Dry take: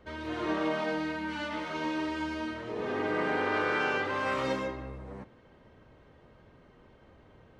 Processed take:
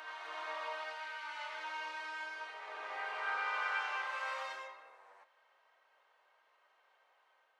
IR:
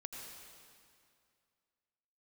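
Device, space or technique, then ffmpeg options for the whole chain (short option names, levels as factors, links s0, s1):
ghost voice: -filter_complex "[0:a]areverse[s0];[1:a]atrim=start_sample=2205[s1];[s0][s1]afir=irnorm=-1:irlink=0,areverse,highpass=f=750:w=0.5412,highpass=f=750:w=1.3066,volume=0.708"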